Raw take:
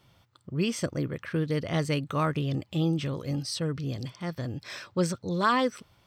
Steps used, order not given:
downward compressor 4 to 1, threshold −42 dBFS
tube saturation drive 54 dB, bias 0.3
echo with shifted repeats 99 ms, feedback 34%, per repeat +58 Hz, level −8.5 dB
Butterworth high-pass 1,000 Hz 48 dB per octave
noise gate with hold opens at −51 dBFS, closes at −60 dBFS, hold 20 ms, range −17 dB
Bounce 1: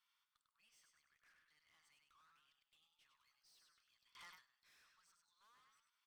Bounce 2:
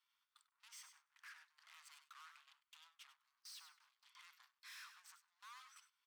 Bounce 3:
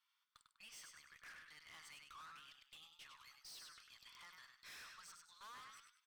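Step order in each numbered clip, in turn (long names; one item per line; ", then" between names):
downward compressor, then echo with shifted repeats, then Butterworth high-pass, then tube saturation, then noise gate with hold
downward compressor, then tube saturation, then Butterworth high-pass, then echo with shifted repeats, then noise gate with hold
downward compressor, then Butterworth high-pass, then noise gate with hold, then echo with shifted repeats, then tube saturation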